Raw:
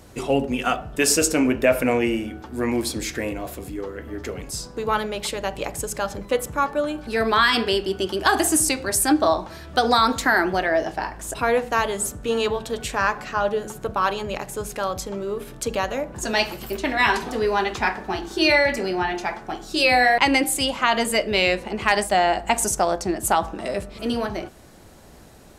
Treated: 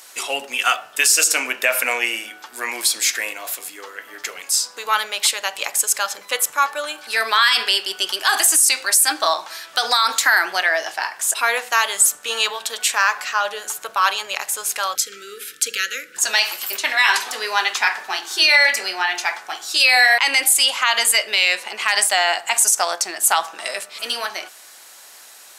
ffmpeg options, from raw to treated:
-filter_complex "[0:a]asettb=1/sr,asplit=3[s0][s1][s2];[s0]atrim=end=14.954[s3];[s1]atrim=start=14.95:end=16.17,asetpts=PTS-STARTPTS,afade=t=in:d=0.004:c=qsin,afade=t=out:st=1.216:d=0.004:c=qsin,asuperstop=centerf=820:order=20:qfactor=1.1[s4];[s2]atrim=start=16.166[s5];[s3][s4]acrossfade=d=0.004:c1=hsin:c2=qsin[s6];[s6][s5]acrossfade=d=0.004:c1=qsin:c2=hsin,highpass=1200,highshelf=f=3500:g=7,alimiter=level_in=3.55:limit=0.891:release=50:level=0:latency=1,volume=0.668"

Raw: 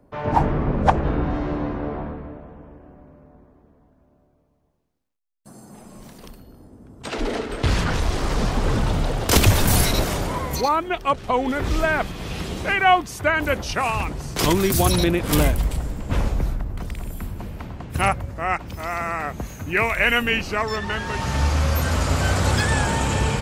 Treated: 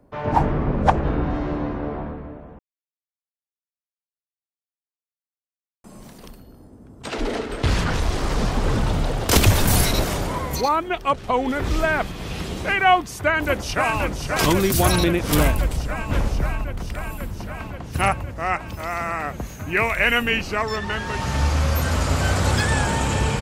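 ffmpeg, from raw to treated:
-filter_complex "[0:a]asplit=2[s0][s1];[s1]afade=t=in:st=12.96:d=0.01,afade=t=out:st=13.99:d=0.01,aecho=0:1:530|1060|1590|2120|2650|3180|3710|4240|4770|5300|5830|6360:0.530884|0.424708|0.339766|0.271813|0.21745|0.17396|0.139168|0.111335|0.0890676|0.0712541|0.0570033|0.0456026[s2];[s0][s2]amix=inputs=2:normalize=0,asplit=3[s3][s4][s5];[s3]atrim=end=2.59,asetpts=PTS-STARTPTS,afade=t=out:st=2.586:d=0.004:c=hsin[s6];[s4]atrim=start=2.59:end=5.84,asetpts=PTS-STARTPTS,volume=0[s7];[s5]atrim=start=5.84,asetpts=PTS-STARTPTS,afade=t=in:d=0.004:c=hsin[s8];[s6][s7][s8]concat=n=3:v=0:a=1"

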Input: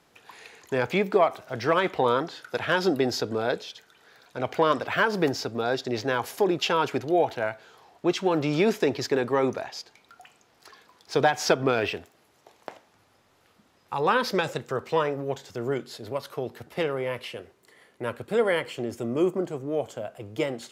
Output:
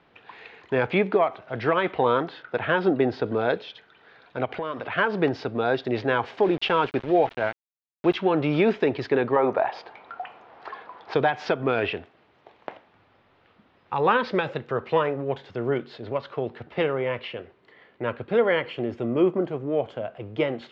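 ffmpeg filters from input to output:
-filter_complex "[0:a]asettb=1/sr,asplit=3[s0][s1][s2];[s0]atrim=end=2.424[s3];[s1]atrim=start=2.42:end=3.26,asetpts=PTS-STARTPTS,afade=t=in:d=0.004:c=qsin,afade=t=out:st=0.836:d=0.004:c=qsin,lowpass=f=2400:p=1[s4];[s2]atrim=start=3.256[s5];[s3][s4]acrossfade=d=0.004:c1=hsin:c2=qsin[s6];[s6][s5]acrossfade=d=0.004:c1=qsin:c2=hsin,asplit=3[s7][s8][s9];[s7]afade=t=out:st=4.44:d=0.02[s10];[s8]acompressor=threshold=0.0282:ratio=4:attack=3.2:release=140:knee=1:detection=peak,afade=t=in:st=4.44:d=0.02,afade=t=out:st=4.97:d=0.02[s11];[s9]afade=t=in:st=4.97:d=0.02[s12];[s10][s11][s12]amix=inputs=3:normalize=0,asettb=1/sr,asplit=3[s13][s14][s15];[s13]atrim=end=6.424[s16];[s14]atrim=start=6.42:end=8.17,asetpts=PTS-STARTPTS,afade=t=in:d=0.004:c=qsin,afade=t=out:st=1.746:d=0.004:c=qsin,aeval=exprs='val(0)*gte(abs(val(0)),0.02)':c=same[s17];[s15]atrim=start=8.166[s18];[s16][s17]acrossfade=d=0.004:c1=hsin:c2=qsin[s19];[s19][s18]acrossfade=d=0.004:c1=qsin:c2=hsin,asettb=1/sr,asplit=3[s20][s21][s22];[s20]atrim=end=9.364[s23];[s21]atrim=start=9.36:end=11.14,asetpts=PTS-STARTPTS,afade=t=in:d=0.004:c=qsin,afade=t=out:st=1.776:d=0.004:c=qsin,equalizer=f=810:t=o:w=2.3:g=14.5[s24];[s22]atrim=start=11.136[s25];[s23][s24]acrossfade=d=0.004:c1=hsin:c2=qsin[s26];[s26][s25]acrossfade=d=0.004:c1=qsin:c2=hsin,lowpass=f=3400:w=0.5412,lowpass=f=3400:w=1.3066,alimiter=limit=0.224:level=0:latency=1:release=489,volume=1.41"

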